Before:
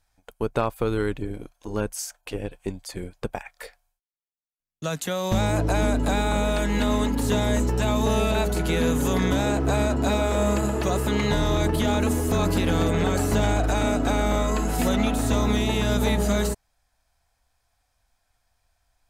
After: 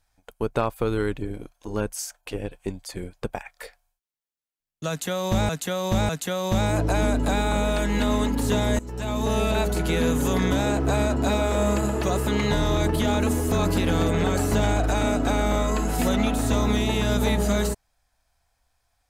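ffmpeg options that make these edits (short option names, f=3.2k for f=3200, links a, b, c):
-filter_complex "[0:a]asplit=4[a][b][c][d];[a]atrim=end=5.492[e];[b]atrim=start=4.888:end=5.492[f];[c]atrim=start=4.888:end=7.59,asetpts=PTS-STARTPTS,afade=t=out:st=2.698:d=0.004:c=hsin:silence=0.1[g];[d]atrim=start=7.59,asetpts=PTS-STARTPTS,afade=t=in:d=0.86:c=qsin:silence=0.1[h];[e][f]acrossfade=d=0.004:c1=hsin:c2=hsin[i];[g][h]concat=n=2:v=0:a=1[j];[i][j]acrossfade=d=0.004:c1=hsin:c2=hsin"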